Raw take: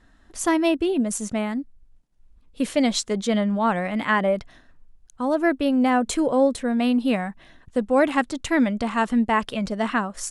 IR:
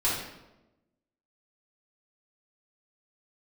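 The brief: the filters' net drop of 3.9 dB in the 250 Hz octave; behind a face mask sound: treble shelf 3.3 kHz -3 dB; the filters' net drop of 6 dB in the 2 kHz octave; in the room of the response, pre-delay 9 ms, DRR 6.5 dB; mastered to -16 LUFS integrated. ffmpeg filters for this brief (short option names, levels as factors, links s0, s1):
-filter_complex "[0:a]equalizer=f=250:t=o:g=-4.5,equalizer=f=2000:t=o:g=-6.5,asplit=2[s0][s1];[1:a]atrim=start_sample=2205,adelay=9[s2];[s1][s2]afir=irnorm=-1:irlink=0,volume=0.141[s3];[s0][s3]amix=inputs=2:normalize=0,highshelf=f=3300:g=-3,volume=2.66"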